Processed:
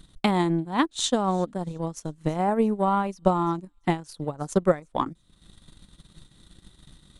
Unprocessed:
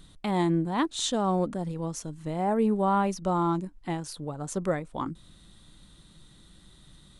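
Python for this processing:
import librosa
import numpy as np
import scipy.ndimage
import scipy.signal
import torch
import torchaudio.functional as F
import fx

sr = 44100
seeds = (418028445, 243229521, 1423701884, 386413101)

y = fx.echo_wet_highpass(x, sr, ms=342, feedback_pct=35, hz=3700.0, wet_db=-20.0)
y = fx.transient(y, sr, attack_db=11, sustain_db=-11)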